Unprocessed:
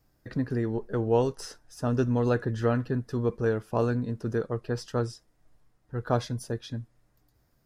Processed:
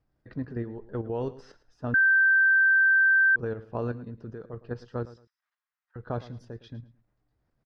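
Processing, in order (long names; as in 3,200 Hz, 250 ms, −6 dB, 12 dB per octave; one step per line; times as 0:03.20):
0:03.91–0:04.49: downward compressor, threshold −28 dBFS, peak gain reduction 5.5 dB
0:05.05–0:05.96: high-pass filter 1,200 Hz 24 dB per octave
output level in coarse steps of 9 dB
high-frequency loss of the air 220 metres
repeating echo 110 ms, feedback 24%, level −16.5 dB
0:01.94–0:03.36: beep over 1,560 Hz −15 dBFS
level −2 dB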